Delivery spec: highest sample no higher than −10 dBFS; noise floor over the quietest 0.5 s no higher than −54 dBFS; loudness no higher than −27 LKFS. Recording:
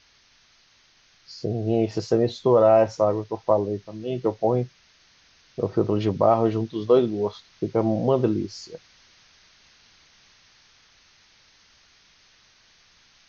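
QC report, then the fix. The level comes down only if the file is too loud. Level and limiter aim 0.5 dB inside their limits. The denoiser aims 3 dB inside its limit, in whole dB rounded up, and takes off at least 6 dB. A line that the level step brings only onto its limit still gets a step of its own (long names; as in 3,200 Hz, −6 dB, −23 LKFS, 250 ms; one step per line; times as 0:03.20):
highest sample −6.5 dBFS: out of spec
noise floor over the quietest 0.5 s −59 dBFS: in spec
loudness −23.0 LKFS: out of spec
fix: level −4.5 dB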